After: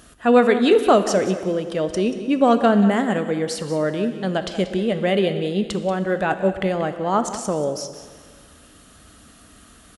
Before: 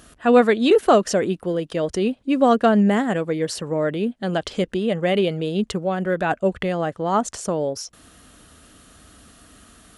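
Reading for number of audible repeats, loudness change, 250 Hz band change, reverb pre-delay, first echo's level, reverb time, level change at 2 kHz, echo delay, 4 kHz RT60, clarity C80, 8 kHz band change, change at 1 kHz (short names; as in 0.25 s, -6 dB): 1, +0.5 dB, +0.5 dB, 7 ms, -14.0 dB, 1.8 s, +0.5 dB, 0.184 s, 1.7 s, 10.0 dB, +0.5 dB, +0.5 dB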